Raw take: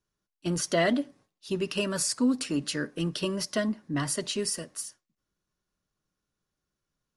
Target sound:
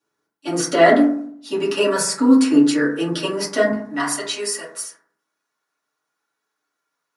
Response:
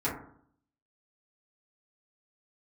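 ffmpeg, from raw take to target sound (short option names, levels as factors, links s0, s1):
-filter_complex "[0:a]asetnsamples=n=441:p=0,asendcmd='3.7 highpass f 780',highpass=340[s0];[1:a]atrim=start_sample=2205[s1];[s0][s1]afir=irnorm=-1:irlink=0,volume=1.68"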